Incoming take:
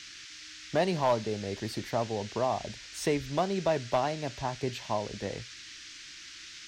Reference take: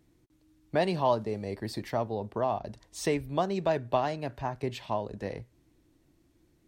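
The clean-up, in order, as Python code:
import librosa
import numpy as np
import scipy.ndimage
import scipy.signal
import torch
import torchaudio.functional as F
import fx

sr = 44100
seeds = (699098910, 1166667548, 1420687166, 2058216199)

y = fx.fix_declip(x, sr, threshold_db=-18.0)
y = fx.noise_reduce(y, sr, print_start_s=5.9, print_end_s=6.4, reduce_db=19.0)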